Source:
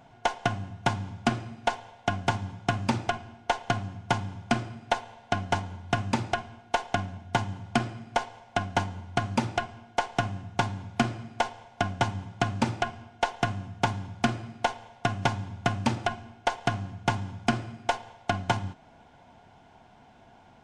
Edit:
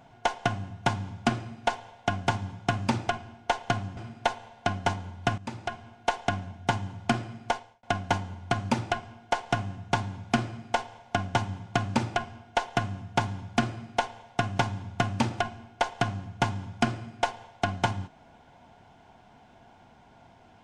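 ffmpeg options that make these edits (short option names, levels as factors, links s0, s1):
-filter_complex "[0:a]asplit=4[s0][s1][s2][s3];[s0]atrim=end=3.972[s4];[s1]atrim=start=4.628:end=6.04,asetpts=PTS-STARTPTS,afade=t=out:st=1.408:d=0.004:c=hsin:silence=0.177828[s5];[s2]atrim=start=6.04:end=8.49,asetpts=PTS-STARTPTS,afade=t=in:d=0.64:silence=0.177828,afade=t=out:st=2.09:d=0.36[s6];[s3]atrim=start=8.49,asetpts=PTS-STARTPTS,afade=t=in:d=0.004:c=hsin[s7];[s5][s6][s7]concat=n=3:v=0:a=1[s8];[s4][s8]acrossfade=d=0.004:c1=hsin:c2=hsin"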